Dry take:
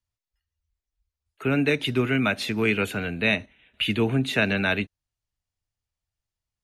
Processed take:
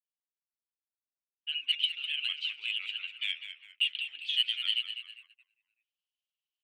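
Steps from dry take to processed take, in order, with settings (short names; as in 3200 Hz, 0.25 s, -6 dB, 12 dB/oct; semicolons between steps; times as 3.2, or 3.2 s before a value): grains 0.1 s, spray 31 ms, pitch spread up and down by 3 st; ladder band-pass 3100 Hz, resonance 80%; in parallel at -3.5 dB: hard clip -27 dBFS, distortion -8 dB; on the sum: frequency-shifting echo 0.201 s, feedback 46%, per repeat -78 Hz, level -9.5 dB; dynamic EQ 3400 Hz, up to +7 dB, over -42 dBFS, Q 1.4; gate -46 dBFS, range -44 dB; reverse; upward compressor, threshold -47 dBFS; reverse; gain -8.5 dB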